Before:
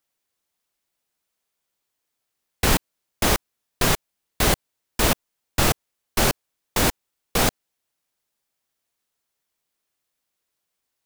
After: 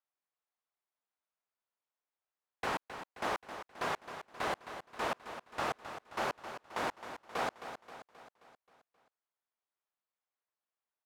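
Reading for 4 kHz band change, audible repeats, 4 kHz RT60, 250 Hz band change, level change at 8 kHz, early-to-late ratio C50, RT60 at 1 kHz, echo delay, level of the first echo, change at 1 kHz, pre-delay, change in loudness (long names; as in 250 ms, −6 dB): −19.5 dB, 5, no reverb audible, −19.0 dB, −26.5 dB, no reverb audible, no reverb audible, 265 ms, −10.5 dB, −8.5 dB, no reverb audible, −16.0 dB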